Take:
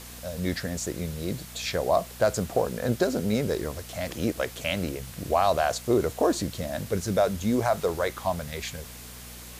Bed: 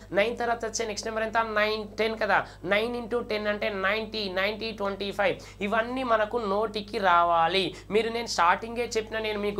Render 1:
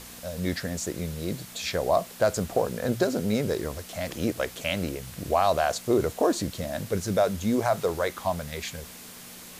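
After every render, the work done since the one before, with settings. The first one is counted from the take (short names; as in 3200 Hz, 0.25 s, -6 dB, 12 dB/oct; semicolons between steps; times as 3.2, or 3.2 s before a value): de-hum 60 Hz, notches 2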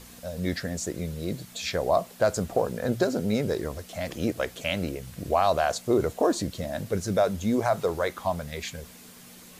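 denoiser 6 dB, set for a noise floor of -45 dBFS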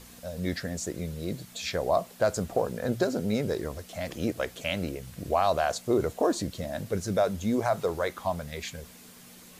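gain -2 dB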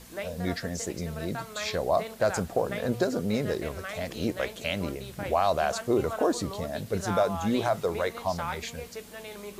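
add bed -12.5 dB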